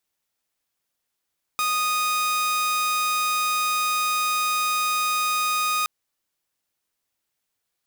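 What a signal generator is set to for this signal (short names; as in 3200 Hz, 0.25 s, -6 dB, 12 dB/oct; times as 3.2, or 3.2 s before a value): tone saw 1240 Hz -18.5 dBFS 4.27 s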